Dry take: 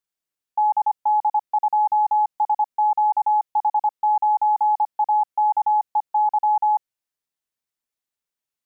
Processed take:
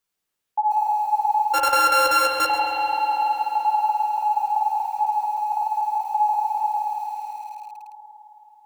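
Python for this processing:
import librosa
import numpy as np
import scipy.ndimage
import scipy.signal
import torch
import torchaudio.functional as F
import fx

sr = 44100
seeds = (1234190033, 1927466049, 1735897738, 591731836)

p1 = fx.sample_sort(x, sr, block=32, at=(1.53, 2.46), fade=0.02)
p2 = fx.dynamic_eq(p1, sr, hz=730.0, q=7.8, threshold_db=-39.0, ratio=4.0, max_db=6)
p3 = fx.over_compress(p2, sr, threshold_db=-24.0, ratio=-0.5)
p4 = p2 + F.gain(torch.from_numpy(p3), -1.0).numpy()
p5 = fx.chorus_voices(p4, sr, voices=6, hz=0.92, base_ms=13, depth_ms=3.0, mix_pct=35)
p6 = fx.rev_spring(p5, sr, rt60_s=3.9, pass_ms=(53,), chirp_ms=50, drr_db=0.0)
p7 = fx.echo_crushed(p6, sr, ms=133, feedback_pct=35, bits=6, wet_db=-13)
y = F.gain(torch.from_numpy(p7), -2.0).numpy()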